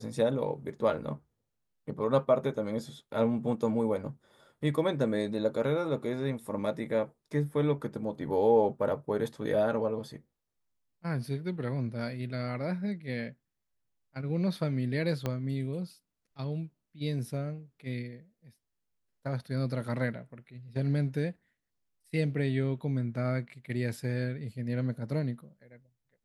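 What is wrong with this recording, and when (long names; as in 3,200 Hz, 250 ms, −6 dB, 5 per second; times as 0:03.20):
0:15.26: click −18 dBFS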